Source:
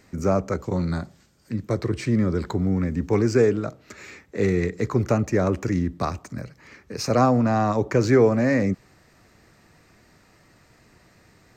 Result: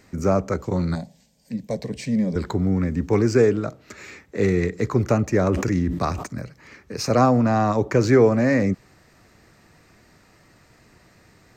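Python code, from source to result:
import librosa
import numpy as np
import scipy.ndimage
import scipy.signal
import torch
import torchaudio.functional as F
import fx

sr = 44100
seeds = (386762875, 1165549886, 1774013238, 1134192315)

y = fx.fixed_phaser(x, sr, hz=350.0, stages=6, at=(0.95, 2.36))
y = fx.sustainer(y, sr, db_per_s=58.0, at=(5.36, 6.27))
y = y * librosa.db_to_amplitude(1.5)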